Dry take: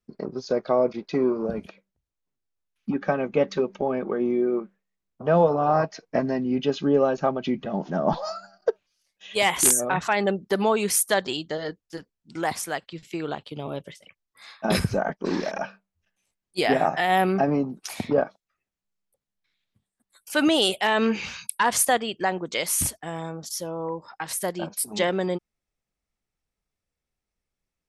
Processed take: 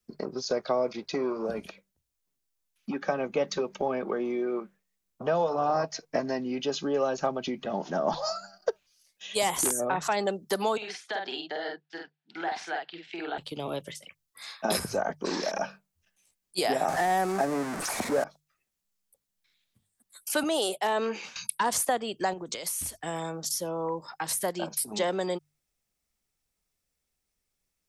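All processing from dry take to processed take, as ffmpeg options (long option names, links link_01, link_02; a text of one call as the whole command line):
ffmpeg -i in.wav -filter_complex "[0:a]asettb=1/sr,asplit=3[link_01][link_02][link_03];[link_01]atrim=end=10.774[link_04];[link_02]atrim=start=10.77:end=13.38,asetpts=PTS-STARTPTS,afade=type=in:duration=0.004:curve=qsin,afade=type=out:start_time=2.606:duration=0.004:curve=qsin,acompressor=threshold=-26dB:ratio=12:attack=3.2:release=140:knee=1:detection=peak,highpass=450,equalizer=frequency=530:width_type=q:width=4:gain=-9,equalizer=frequency=770:width_type=q:width=4:gain=6,equalizer=frequency=1100:width_type=q:width=4:gain=-7,equalizer=frequency=1600:width_type=q:width=4:gain=6,lowpass=frequency=3600:width=0.5412,lowpass=frequency=3600:width=1.3066,asplit=2[link_05][link_06];[link_06]adelay=47,volume=-2.5dB[link_07];[link_05][link_07]amix=inputs=2:normalize=0,atrim=end_sample=115101[link_08];[link_03]atrim=start=13.376[link_09];[link_04][link_08]acrossfade=duration=0.004:curve1=hsin:curve2=qsin[link_10];[link_10][link_09]acrossfade=duration=0.004:curve1=qsin:curve2=hsin,asettb=1/sr,asplit=3[link_11][link_12][link_13];[link_11]atrim=end=16.884[link_14];[link_12]atrim=start=16.88:end=18.24,asetpts=PTS-STARTPTS,afade=type=in:duration=0.004:curve=qsin,afade=type=out:start_time=1.356:duration=0.004:curve=qsin,aeval=exprs='val(0)+0.5*0.0562*sgn(val(0))':channel_layout=same,lowpass=9300,highshelf=frequency=2400:width_type=q:width=1.5:gain=-8[link_15];[link_13]atrim=start=18.236[link_16];[link_14][link_15]acrossfade=duration=0.004:curve1=hsin:curve2=qsin[link_17];[link_17][link_16]acrossfade=duration=0.004:curve1=qsin:curve2=hsin,asettb=1/sr,asplit=3[link_18][link_19][link_20];[link_18]atrim=end=20.434[link_21];[link_19]atrim=start=20.43:end=21.36,asetpts=PTS-STARTPTS,afade=type=in:duration=0.004:curve=qsin,afade=type=out:start_time=0.926:duration=0.004:curve=qsin,highpass=300,highshelf=frequency=2500:gain=-9.5,agate=range=-33dB:threshold=-36dB:ratio=3:release=100:detection=peak[link_22];[link_20]atrim=start=21.356[link_23];[link_21][link_22]acrossfade=duration=0.004:curve1=hsin:curve2=qsin[link_24];[link_24][link_23]acrossfade=duration=0.004:curve1=qsin:curve2=hsin,asettb=1/sr,asplit=3[link_25][link_26][link_27];[link_25]atrim=end=22.334[link_28];[link_26]atrim=start=22.33:end=23.03,asetpts=PTS-STARTPTS,afade=type=in:duration=0.004:curve=qsin,afade=type=out:start_time=0.696:duration=0.004:curve=qsin,asubboost=boost=11.5:cutoff=73,acompressor=threshold=-32dB:ratio=12:attack=3.2:release=140:knee=1:detection=peak[link_29];[link_27]atrim=start=23.026[link_30];[link_28][link_29]acrossfade=duration=0.004:curve1=hsin:curve2=qsin[link_31];[link_31][link_30]acrossfade=duration=0.004:curve1=qsin:curve2=hsin,highshelf=frequency=4100:gain=11,bandreject=frequency=50:width_type=h:width=6,bandreject=frequency=100:width_type=h:width=6,bandreject=frequency=150:width_type=h:width=6,acrossover=split=270|540|1300|4200[link_32][link_33][link_34][link_35][link_36];[link_32]acompressor=threshold=-42dB:ratio=4[link_37];[link_33]acompressor=threshold=-34dB:ratio=4[link_38];[link_34]acompressor=threshold=-27dB:ratio=4[link_39];[link_35]acompressor=threshold=-43dB:ratio=4[link_40];[link_36]acompressor=threshold=-31dB:ratio=4[link_41];[link_37][link_38][link_39][link_40][link_41]amix=inputs=5:normalize=0" out.wav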